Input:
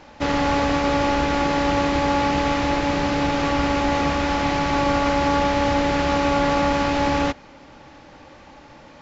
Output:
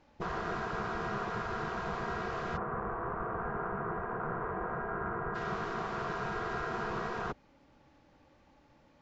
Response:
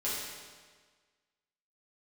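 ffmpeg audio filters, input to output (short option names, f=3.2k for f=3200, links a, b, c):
-filter_complex "[0:a]afwtdn=0.0631,asplit=3[a][b][c];[a]afade=t=out:st=2.56:d=0.02[d];[b]lowpass=f=1.7k:w=0.5412,lowpass=f=1.7k:w=1.3066,afade=t=in:st=2.56:d=0.02,afade=t=out:st=5.34:d=0.02[e];[c]afade=t=in:st=5.34:d=0.02[f];[d][e][f]amix=inputs=3:normalize=0,afftfilt=real='re*lt(hypot(re,im),0.158)':imag='im*lt(hypot(re,im),0.158)':win_size=1024:overlap=0.75,lowshelf=f=420:g=6,volume=-4.5dB"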